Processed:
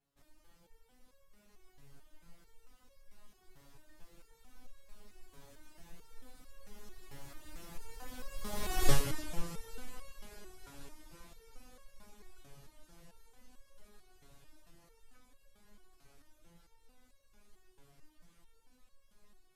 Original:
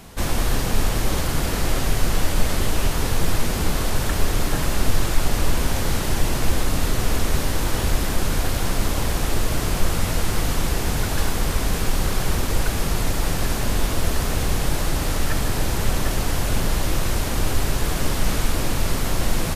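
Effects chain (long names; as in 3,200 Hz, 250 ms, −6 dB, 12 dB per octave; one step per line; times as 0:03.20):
source passing by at 0:08.87, 17 m/s, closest 1.7 metres
reverb reduction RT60 0.64 s
step-sequenced resonator 4.5 Hz 140–550 Hz
level +10 dB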